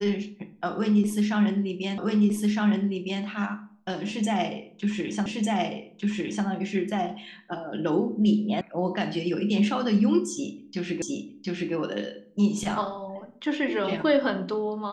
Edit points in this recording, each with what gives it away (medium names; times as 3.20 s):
1.98 s: repeat of the last 1.26 s
5.26 s: repeat of the last 1.2 s
8.61 s: sound stops dead
11.02 s: repeat of the last 0.71 s